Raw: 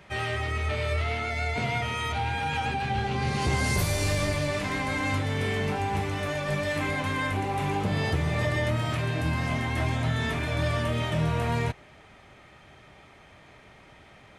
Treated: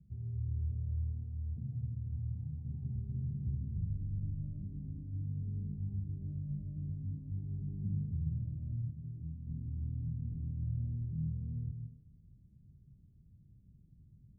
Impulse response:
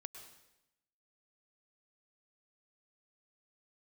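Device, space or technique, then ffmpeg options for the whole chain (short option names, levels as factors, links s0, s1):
club heard from the street: -filter_complex "[0:a]alimiter=limit=0.0631:level=0:latency=1:release=184,lowpass=f=180:w=0.5412,lowpass=f=180:w=1.3066[s0];[1:a]atrim=start_sample=2205[s1];[s0][s1]afir=irnorm=-1:irlink=0,asettb=1/sr,asplit=3[s2][s3][s4];[s2]atrim=end=8.904[s5];[s3]atrim=start=8.9:end=9.47,asetpts=PTS-STARTPTS,afade=t=in:d=0.004:c=qsin,afade=t=out:st=0.566:d=0.004:c=qsin,tiltshelf=f=1500:g=-5.5[s6];[s4]atrim=start=9.466[s7];[s5][s6]acrossfade=d=0.004:c1=hsin:c2=qsin[s8];[s8][s7]acrossfade=d=0.004:c1=qsin:c2=hsin,volume=1.5"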